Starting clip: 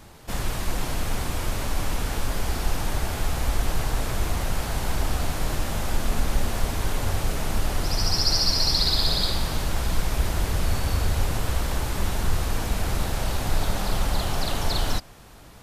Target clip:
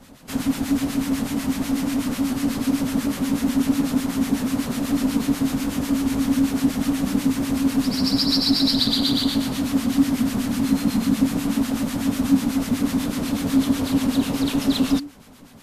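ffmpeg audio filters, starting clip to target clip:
-filter_complex "[0:a]afreqshift=-290,acrossover=split=1100[s0][s1];[s0]aeval=exprs='val(0)*(1-0.7/2+0.7/2*cos(2*PI*8.1*n/s))':c=same[s2];[s1]aeval=exprs='val(0)*(1-0.7/2-0.7/2*cos(2*PI*8.1*n/s))':c=same[s3];[s2][s3]amix=inputs=2:normalize=0,volume=1.58"

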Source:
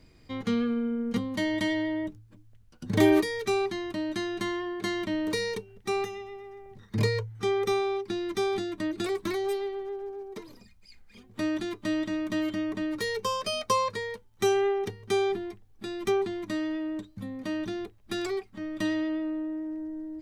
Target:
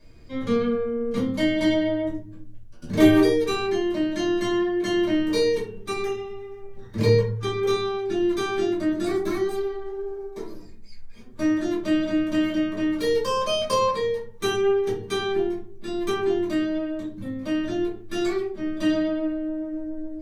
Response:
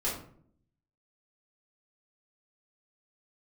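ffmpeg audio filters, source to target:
-filter_complex "[0:a]asettb=1/sr,asplit=3[s0][s1][s2];[s0]atrim=end=8.784[s3];[s1]atrim=start=8.78:end=11.7,asetpts=PTS-STARTPTS,afade=t=in:d=0.004:c=qsin,afade=t=out:st=2.916:d=0.004:c=qsin,equalizer=f=2900:w=2.1:g=-6.5[s4];[s2]atrim=start=11.696[s5];[s3][s4]acrossfade=d=0.004:c1=hsin:c2=qsin[s6];[s6][s5]acrossfade=d=0.004:c1=qsin:c2=hsin[s7];[1:a]atrim=start_sample=2205,asetrate=57330,aresample=44100[s8];[s7][s8]afir=irnorm=-1:irlink=0"

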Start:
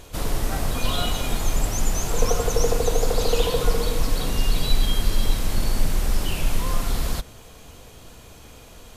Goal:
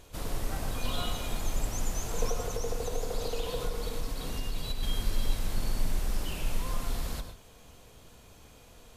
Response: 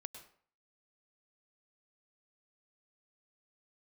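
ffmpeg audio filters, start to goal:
-filter_complex "[0:a]asettb=1/sr,asplit=3[s0][s1][s2];[s0]atrim=end=2.274[s3];[s1]atrim=start=2.27:end=4.83,asetpts=PTS-STARTPTS,afade=t=in:d=0.004:c=qsin,afade=t=out:st=2.556:d=0.004:c=qsin,acompressor=threshold=0.126:ratio=6[s4];[s2]atrim=start=4.826[s5];[s3][s4]acrossfade=d=0.004:c1=hsin:c2=qsin[s6];[s6][s5]acrossfade=d=0.004:c1=qsin:c2=hsin[s7];[1:a]atrim=start_sample=2205,afade=t=out:st=0.2:d=0.01,atrim=end_sample=9261[s8];[s7][s8]afir=irnorm=-1:irlink=0,volume=0.596"

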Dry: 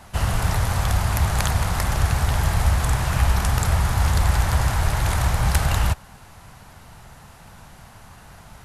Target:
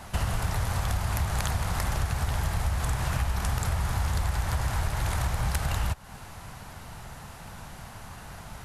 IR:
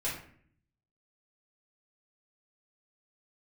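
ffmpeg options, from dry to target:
-af "acompressor=threshold=0.0447:ratio=5,volume=1.26"

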